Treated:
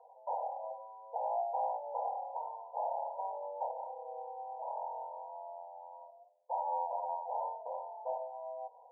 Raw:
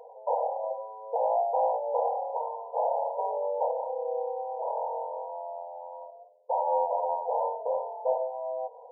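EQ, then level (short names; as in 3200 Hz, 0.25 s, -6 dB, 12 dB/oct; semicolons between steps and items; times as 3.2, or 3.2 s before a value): HPF 710 Hz 24 dB/oct; LPF 1000 Hz 24 dB/oct; -4.5 dB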